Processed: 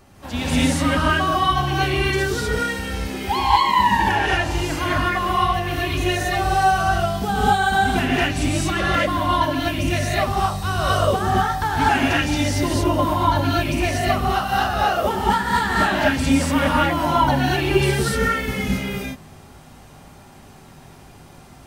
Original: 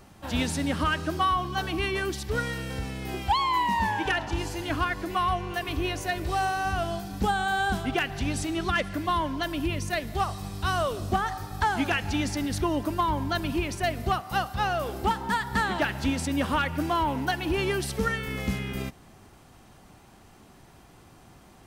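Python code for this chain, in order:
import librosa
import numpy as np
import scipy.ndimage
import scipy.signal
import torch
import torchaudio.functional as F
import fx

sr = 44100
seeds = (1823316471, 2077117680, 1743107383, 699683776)

y = fx.rev_gated(x, sr, seeds[0], gate_ms=270, shape='rising', drr_db=-7.5)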